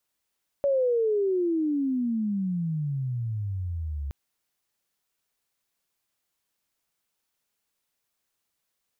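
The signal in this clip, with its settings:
glide logarithmic 570 Hz → 68 Hz −20 dBFS → −29 dBFS 3.47 s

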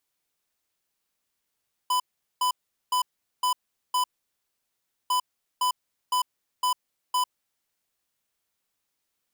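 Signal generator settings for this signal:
beeps in groups square 1,000 Hz, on 0.10 s, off 0.41 s, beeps 5, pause 1.06 s, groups 2, −23.5 dBFS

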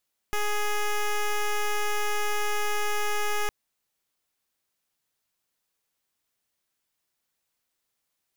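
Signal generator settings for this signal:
pulse wave 417 Hz, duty 10% −25.5 dBFS 3.16 s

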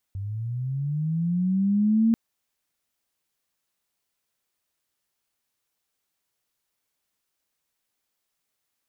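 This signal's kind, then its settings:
glide linear 95 Hz → 230 Hz −29 dBFS → −16 dBFS 1.99 s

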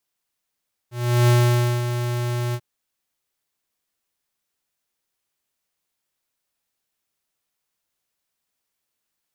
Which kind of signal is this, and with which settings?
note with an ADSR envelope square 121 Hz, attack 368 ms, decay 540 ms, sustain −9.5 dB, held 1.63 s, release 59 ms −14.5 dBFS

